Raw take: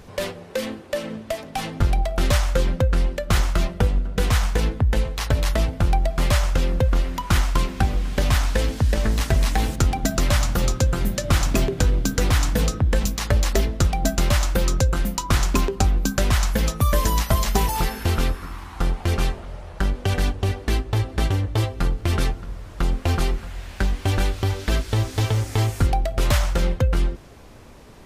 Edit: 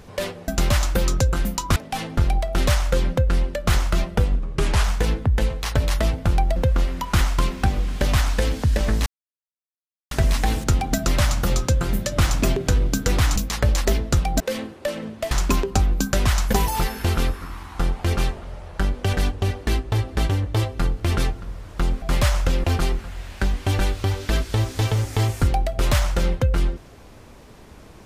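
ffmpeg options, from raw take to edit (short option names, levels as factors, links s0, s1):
-filter_complex "[0:a]asplit=13[s0][s1][s2][s3][s4][s5][s6][s7][s8][s9][s10][s11][s12];[s0]atrim=end=0.482[s13];[s1]atrim=start=14.078:end=15.362[s14];[s2]atrim=start=1.388:end=4.024[s15];[s3]atrim=start=4.02:end=4.39,asetpts=PTS-STARTPTS,asetrate=36162,aresample=44100[s16];[s4]atrim=start=4.386:end=6.112[s17];[s5]atrim=start=6.728:end=9.23,asetpts=PTS-STARTPTS,afade=t=out:st=2.498:d=0.004:c=hsin,apad=pad_dur=1.05[s18];[s6]atrim=start=9.23:end=12.482,asetpts=PTS-STARTPTS,afade=t=in:d=0.004:c=hsin[s19];[s7]atrim=start=13.038:end=14.082[s20];[s8]atrim=start=0.478:end=1.392[s21];[s9]atrim=start=15.358:end=16.582[s22];[s10]atrim=start=17.538:end=23.032[s23];[s11]atrim=start=6.108:end=6.732[s24];[s12]atrim=start=23.028[s25];[s13][s14]acrossfade=d=0.004:c1=hsin:c2=hsin[s26];[s26][s15]acrossfade=d=0.004:c1=hsin:c2=hsin[s27];[s27][s16]acrossfade=d=0.004:c1=hsin:c2=hsin[s28];[s28][s17]acrossfade=d=0.004:c1=hsin:c2=hsin[s29];[s18][s19]concat=n=2:v=0:a=1[s30];[s29][s30]acrossfade=d=0.004:c1=hsin:c2=hsin[s31];[s31][s20]acrossfade=d=0.004:c1=hsin:c2=hsin[s32];[s32][s21]acrossfade=d=0.004:c1=hsin:c2=hsin[s33];[s33][s22]acrossfade=d=0.004:c1=hsin:c2=hsin[s34];[s34][s23]acrossfade=d=0.004:c1=hsin:c2=hsin[s35];[s35][s24]acrossfade=d=0.004:c1=hsin:c2=hsin[s36];[s36][s25]acrossfade=d=0.004:c1=hsin:c2=hsin"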